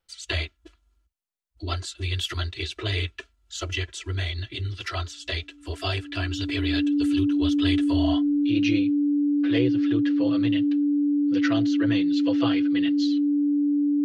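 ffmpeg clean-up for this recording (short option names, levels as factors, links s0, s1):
-af "bandreject=f=290:w=30"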